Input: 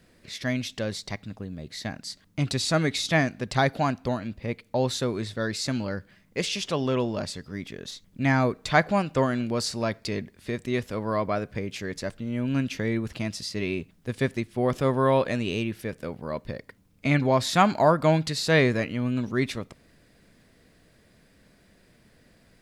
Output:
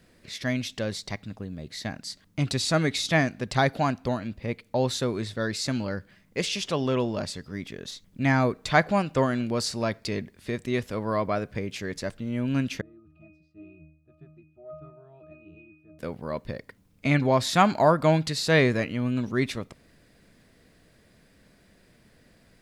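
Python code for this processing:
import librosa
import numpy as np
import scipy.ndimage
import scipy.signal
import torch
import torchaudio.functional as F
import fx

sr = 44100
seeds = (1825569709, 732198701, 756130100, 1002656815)

y = fx.octave_resonator(x, sr, note='D#', decay_s=0.61, at=(12.81, 15.99))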